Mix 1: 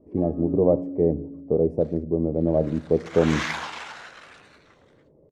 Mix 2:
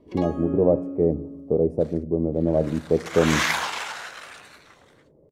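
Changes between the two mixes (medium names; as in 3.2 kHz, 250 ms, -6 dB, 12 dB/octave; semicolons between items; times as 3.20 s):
first sound: remove band-pass filter 270 Hz, Q 1.9; second sound +5.0 dB; master: remove distance through air 64 m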